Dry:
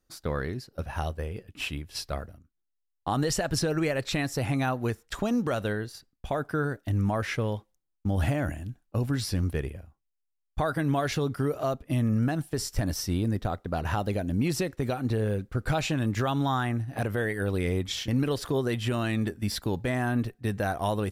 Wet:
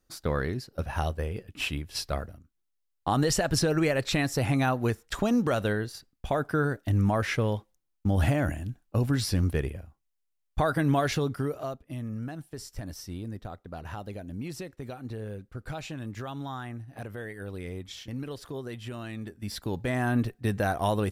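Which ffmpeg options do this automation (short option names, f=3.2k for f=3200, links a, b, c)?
-af "volume=13.5dB,afade=t=out:st=10.99:d=0.84:silence=0.251189,afade=t=in:st=19.3:d=0.86:silence=0.266073"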